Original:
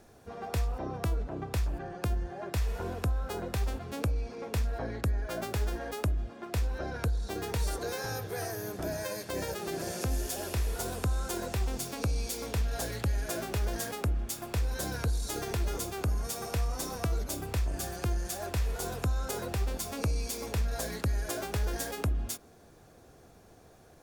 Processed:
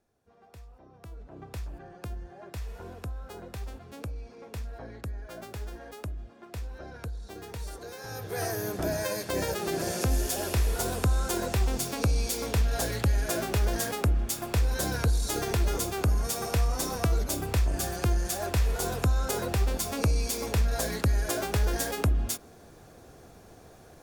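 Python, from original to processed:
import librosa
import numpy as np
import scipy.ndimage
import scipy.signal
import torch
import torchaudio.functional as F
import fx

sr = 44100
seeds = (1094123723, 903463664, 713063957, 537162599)

y = fx.gain(x, sr, db=fx.line((0.9, -18.5), (1.44, -7.0), (7.98, -7.0), (8.44, 5.0)))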